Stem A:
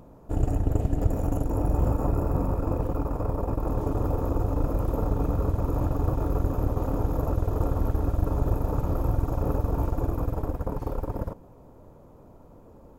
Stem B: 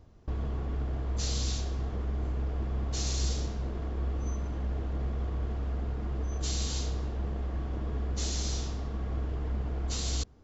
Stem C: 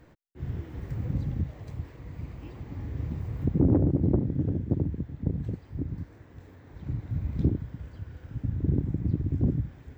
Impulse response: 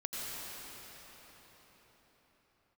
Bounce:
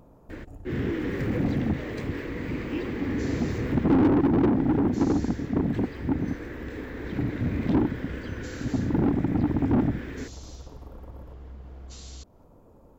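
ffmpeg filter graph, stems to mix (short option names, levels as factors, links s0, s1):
-filter_complex "[0:a]acompressor=threshold=0.0355:ratio=6,volume=0.631[s0];[1:a]adelay=2000,volume=0.562[s1];[2:a]firequalizer=gain_entry='entry(150,0);entry(230,9);entry(480,5);entry(700,-8);entry(1700,7)':delay=0.05:min_phase=1,asplit=2[s2][s3];[s3]highpass=f=720:p=1,volume=22.4,asoftclip=type=tanh:threshold=0.251[s4];[s2][s4]amix=inputs=2:normalize=0,lowpass=f=1200:p=1,volume=0.501,adelay=300,volume=0.75[s5];[s0][s1]amix=inputs=2:normalize=0,acompressor=threshold=0.00794:ratio=2.5,volume=1[s6];[s5][s6]amix=inputs=2:normalize=0"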